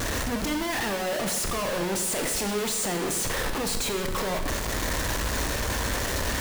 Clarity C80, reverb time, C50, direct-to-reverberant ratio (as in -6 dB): 9.0 dB, 1.1 s, 7.0 dB, 5.0 dB